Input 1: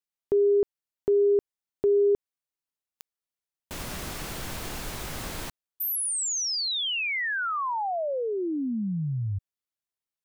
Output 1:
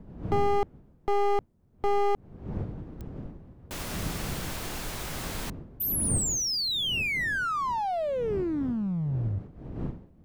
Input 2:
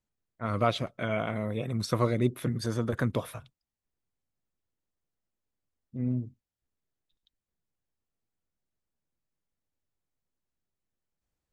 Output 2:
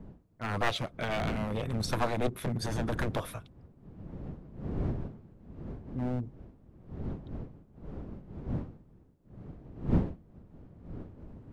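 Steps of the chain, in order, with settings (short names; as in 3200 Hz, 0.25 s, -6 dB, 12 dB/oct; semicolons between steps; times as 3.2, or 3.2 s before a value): one-sided fold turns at -26.5 dBFS; wind noise 200 Hz -39 dBFS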